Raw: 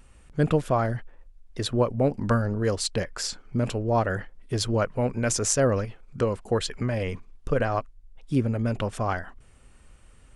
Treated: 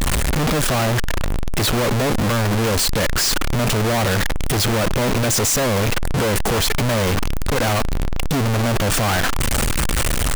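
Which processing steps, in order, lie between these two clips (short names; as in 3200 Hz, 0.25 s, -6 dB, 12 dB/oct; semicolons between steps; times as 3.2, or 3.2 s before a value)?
infinite clipping; gain +9 dB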